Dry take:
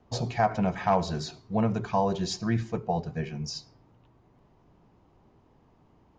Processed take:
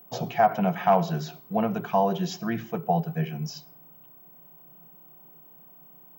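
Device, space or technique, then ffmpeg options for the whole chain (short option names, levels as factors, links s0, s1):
old television with a line whistle: -af "highpass=f=160:w=0.5412,highpass=f=160:w=1.3066,equalizer=f=160:t=q:w=4:g=10,equalizer=f=250:t=q:w=4:g=-3,equalizer=f=710:t=q:w=4:g=6,equalizer=f=1400:t=q:w=4:g=4,equalizer=f=3000:t=q:w=4:g=7,equalizer=f=4400:t=q:w=4:g=-9,lowpass=f=6600:w=0.5412,lowpass=f=6600:w=1.3066,aeval=exprs='val(0)+0.00355*sin(2*PI*15734*n/s)':c=same"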